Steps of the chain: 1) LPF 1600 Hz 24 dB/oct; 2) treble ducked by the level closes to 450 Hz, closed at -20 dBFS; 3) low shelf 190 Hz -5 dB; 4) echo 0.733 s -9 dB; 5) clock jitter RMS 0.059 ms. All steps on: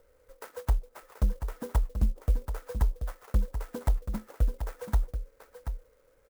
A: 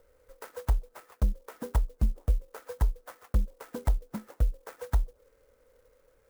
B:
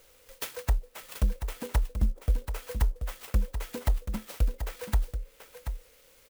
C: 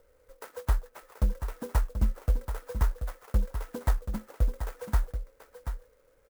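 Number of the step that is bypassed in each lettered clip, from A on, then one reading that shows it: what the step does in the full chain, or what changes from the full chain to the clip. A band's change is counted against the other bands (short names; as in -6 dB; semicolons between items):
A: 4, momentary loudness spread change +2 LU; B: 1, 2 kHz band +5.5 dB; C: 2, 2 kHz band +3.5 dB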